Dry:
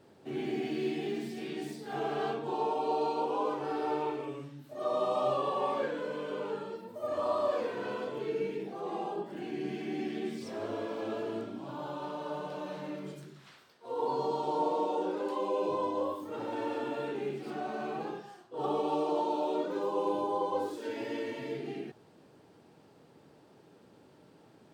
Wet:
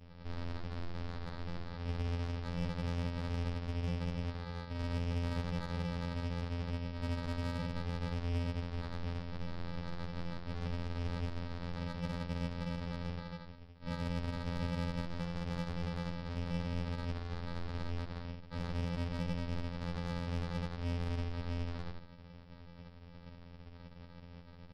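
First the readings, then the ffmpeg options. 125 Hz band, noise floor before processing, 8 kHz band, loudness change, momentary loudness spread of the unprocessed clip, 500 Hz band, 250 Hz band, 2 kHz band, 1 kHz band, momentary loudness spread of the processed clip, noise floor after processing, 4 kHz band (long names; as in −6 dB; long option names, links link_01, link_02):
+13.0 dB, −60 dBFS, can't be measured, −5.0 dB, 9 LU, −14.0 dB, −3.5 dB, −2.0 dB, −13.5 dB, 16 LU, −53 dBFS, −1.0 dB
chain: -filter_complex "[0:a]bandreject=frequency=60:width_type=h:width=6,bandreject=frequency=120:width_type=h:width=6,bandreject=frequency=180:width_type=h:width=6,bandreject=frequency=240:width_type=h:width=6,bandreject=frequency=300:width_type=h:width=6,bandreject=frequency=360:width_type=h:width=6,bandreject=frequency=420:width_type=h:width=6,bandreject=frequency=480:width_type=h:width=6,bandreject=frequency=540:width_type=h:width=6,acompressor=threshold=-42dB:ratio=3,asplit=2[link_01][link_02];[link_02]adelay=77,lowpass=frequency=3300:poles=1,volume=-6dB,asplit=2[link_03][link_04];[link_04]adelay=77,lowpass=frequency=3300:poles=1,volume=0.36,asplit=2[link_05][link_06];[link_06]adelay=77,lowpass=frequency=3300:poles=1,volume=0.36,asplit=2[link_07][link_08];[link_08]adelay=77,lowpass=frequency=3300:poles=1,volume=0.36[link_09];[link_01][link_03][link_05][link_07][link_09]amix=inputs=5:normalize=0,aresample=11025,acrusher=samples=31:mix=1:aa=0.000001,aresample=44100,asoftclip=type=tanh:threshold=-37dB,afftfilt=real='hypot(re,im)*cos(PI*b)':imag='0':win_size=2048:overlap=0.75,volume=10dB"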